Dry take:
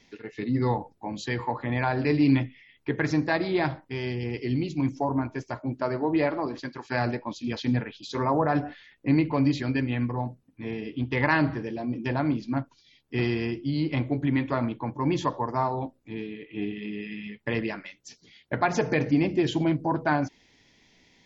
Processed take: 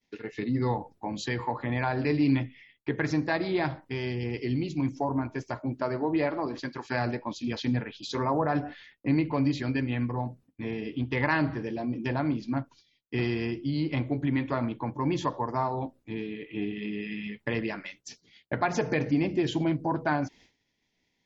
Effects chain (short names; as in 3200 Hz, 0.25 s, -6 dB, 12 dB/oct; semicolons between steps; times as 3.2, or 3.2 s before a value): expander -48 dBFS; in parallel at +2.5 dB: compressor, threshold -34 dBFS, peak gain reduction 16.5 dB; on the sum: gain -5 dB